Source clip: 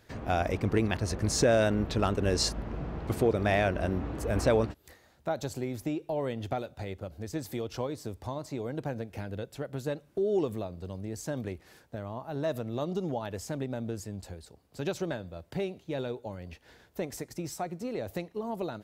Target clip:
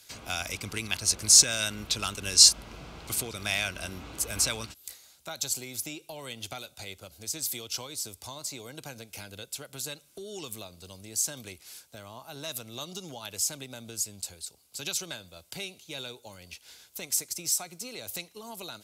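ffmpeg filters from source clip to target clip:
ffmpeg -i in.wav -filter_complex "[0:a]lowpass=12000,tiltshelf=frequency=1200:gain=-6.5,bandreject=frequency=1800:width=5,acrossover=split=270|930|3400[link_01][link_02][link_03][link_04];[link_02]acompressor=threshold=-41dB:ratio=6[link_05];[link_01][link_05][link_03][link_04]amix=inputs=4:normalize=0,crystalizer=i=5:c=0,volume=-4dB" out.wav

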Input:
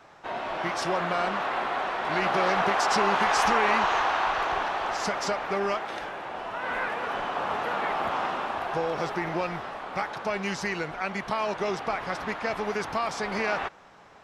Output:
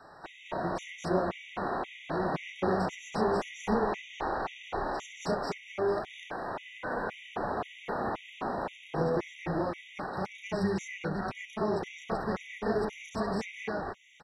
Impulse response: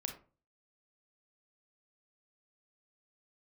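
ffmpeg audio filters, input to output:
-filter_complex "[0:a]acrossover=split=500[link_01][link_02];[link_02]acompressor=threshold=-40dB:ratio=5[link_03];[link_01][link_03]amix=inputs=2:normalize=0,asplit=2[link_04][link_05];[link_05]asetrate=22050,aresample=44100,atempo=2,volume=-15dB[link_06];[link_04][link_06]amix=inputs=2:normalize=0,asplit=2[link_07][link_08];[link_08]aecho=0:1:67.06|215.7|247.8:0.355|0.891|1[link_09];[link_07][link_09]amix=inputs=2:normalize=0,afftfilt=real='re*gt(sin(2*PI*1.9*pts/sr)*(1-2*mod(floor(b*sr/1024/1900),2)),0)':imag='im*gt(sin(2*PI*1.9*pts/sr)*(1-2*mod(floor(b*sr/1024/1900),2)),0)':win_size=1024:overlap=0.75"

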